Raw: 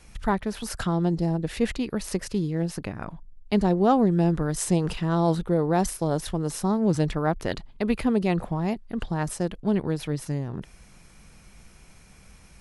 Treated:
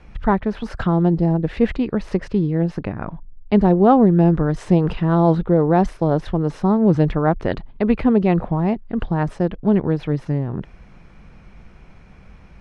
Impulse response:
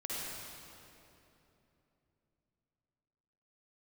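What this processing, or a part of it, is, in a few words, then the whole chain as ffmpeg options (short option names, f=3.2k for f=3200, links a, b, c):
phone in a pocket: -af "lowpass=3.4k,highshelf=f=2.4k:g=-9.5,volume=7.5dB"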